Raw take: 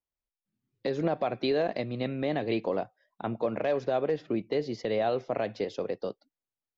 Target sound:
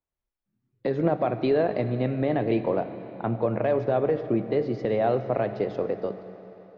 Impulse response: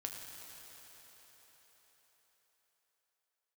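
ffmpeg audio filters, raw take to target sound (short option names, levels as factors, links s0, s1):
-filter_complex "[0:a]lowpass=1600,aemphasis=mode=production:type=75kf,asplit=2[s0][s1];[1:a]atrim=start_sample=2205,asetrate=57330,aresample=44100,lowshelf=f=350:g=8.5[s2];[s1][s2]afir=irnorm=-1:irlink=0,volume=0.891[s3];[s0][s3]amix=inputs=2:normalize=0"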